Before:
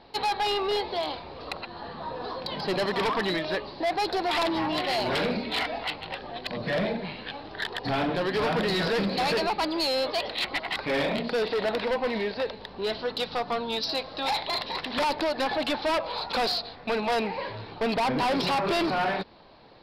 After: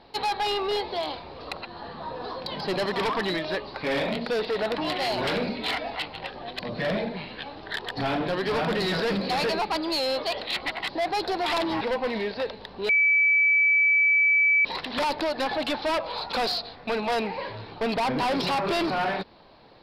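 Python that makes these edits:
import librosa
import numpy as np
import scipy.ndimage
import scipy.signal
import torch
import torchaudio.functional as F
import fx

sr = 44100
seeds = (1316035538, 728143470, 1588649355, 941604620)

y = fx.edit(x, sr, fx.swap(start_s=3.74, length_s=0.92, other_s=10.77, other_length_s=1.04),
    fx.bleep(start_s=12.89, length_s=1.76, hz=2300.0, db=-17.0), tone=tone)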